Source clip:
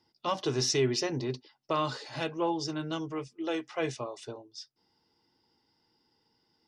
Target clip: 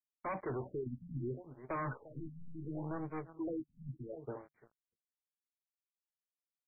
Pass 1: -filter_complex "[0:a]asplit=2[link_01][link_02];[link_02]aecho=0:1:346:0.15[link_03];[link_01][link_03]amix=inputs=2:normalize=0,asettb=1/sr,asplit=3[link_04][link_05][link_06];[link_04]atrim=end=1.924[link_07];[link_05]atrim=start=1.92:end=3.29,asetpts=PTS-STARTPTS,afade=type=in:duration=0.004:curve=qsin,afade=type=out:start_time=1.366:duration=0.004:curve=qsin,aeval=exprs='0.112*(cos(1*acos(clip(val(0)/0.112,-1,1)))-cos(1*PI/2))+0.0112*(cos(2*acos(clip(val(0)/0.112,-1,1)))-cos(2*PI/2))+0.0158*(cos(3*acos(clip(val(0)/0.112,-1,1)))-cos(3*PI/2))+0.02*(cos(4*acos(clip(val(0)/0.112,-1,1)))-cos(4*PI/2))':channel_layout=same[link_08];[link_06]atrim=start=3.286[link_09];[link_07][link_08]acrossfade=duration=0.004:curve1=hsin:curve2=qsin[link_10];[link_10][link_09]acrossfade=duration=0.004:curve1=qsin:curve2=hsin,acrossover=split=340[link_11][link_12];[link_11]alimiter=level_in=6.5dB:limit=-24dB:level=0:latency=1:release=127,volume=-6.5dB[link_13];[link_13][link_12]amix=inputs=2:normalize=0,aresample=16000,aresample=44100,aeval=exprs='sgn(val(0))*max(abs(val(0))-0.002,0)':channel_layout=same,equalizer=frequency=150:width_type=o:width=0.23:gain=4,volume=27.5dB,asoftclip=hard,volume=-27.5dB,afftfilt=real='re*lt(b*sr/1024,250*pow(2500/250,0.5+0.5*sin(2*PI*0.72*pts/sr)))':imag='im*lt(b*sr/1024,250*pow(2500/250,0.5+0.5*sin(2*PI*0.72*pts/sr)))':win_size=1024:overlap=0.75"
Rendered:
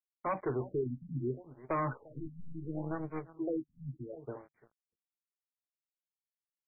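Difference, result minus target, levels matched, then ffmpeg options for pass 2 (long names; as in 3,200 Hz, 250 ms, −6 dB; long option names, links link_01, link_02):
gain into a clipping stage and back: distortion −7 dB
-filter_complex "[0:a]asplit=2[link_01][link_02];[link_02]aecho=0:1:346:0.15[link_03];[link_01][link_03]amix=inputs=2:normalize=0,asettb=1/sr,asplit=3[link_04][link_05][link_06];[link_04]atrim=end=1.924[link_07];[link_05]atrim=start=1.92:end=3.29,asetpts=PTS-STARTPTS,afade=type=in:duration=0.004:curve=qsin,afade=type=out:start_time=1.366:duration=0.004:curve=qsin,aeval=exprs='0.112*(cos(1*acos(clip(val(0)/0.112,-1,1)))-cos(1*PI/2))+0.0112*(cos(2*acos(clip(val(0)/0.112,-1,1)))-cos(2*PI/2))+0.0158*(cos(3*acos(clip(val(0)/0.112,-1,1)))-cos(3*PI/2))+0.02*(cos(4*acos(clip(val(0)/0.112,-1,1)))-cos(4*PI/2))':channel_layout=same[link_08];[link_06]atrim=start=3.286[link_09];[link_07][link_08]acrossfade=duration=0.004:curve1=hsin:curve2=qsin[link_10];[link_10][link_09]acrossfade=duration=0.004:curve1=qsin:curve2=hsin,acrossover=split=340[link_11][link_12];[link_11]alimiter=level_in=6.5dB:limit=-24dB:level=0:latency=1:release=127,volume=-6.5dB[link_13];[link_13][link_12]amix=inputs=2:normalize=0,aresample=16000,aresample=44100,aeval=exprs='sgn(val(0))*max(abs(val(0))-0.002,0)':channel_layout=same,equalizer=frequency=150:width_type=o:width=0.23:gain=4,volume=35dB,asoftclip=hard,volume=-35dB,afftfilt=real='re*lt(b*sr/1024,250*pow(2500/250,0.5+0.5*sin(2*PI*0.72*pts/sr)))':imag='im*lt(b*sr/1024,250*pow(2500/250,0.5+0.5*sin(2*PI*0.72*pts/sr)))':win_size=1024:overlap=0.75"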